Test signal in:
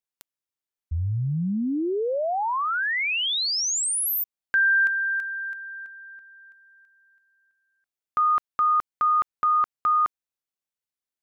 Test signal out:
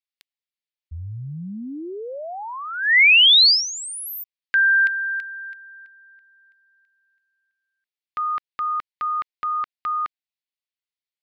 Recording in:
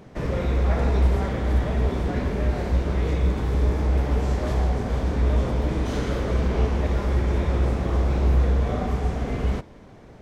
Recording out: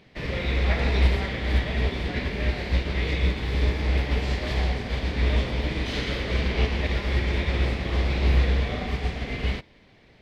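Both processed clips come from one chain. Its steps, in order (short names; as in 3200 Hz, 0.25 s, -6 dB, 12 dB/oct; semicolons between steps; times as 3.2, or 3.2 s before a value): band shelf 3000 Hz +13 dB; upward expander 1.5:1, over -35 dBFS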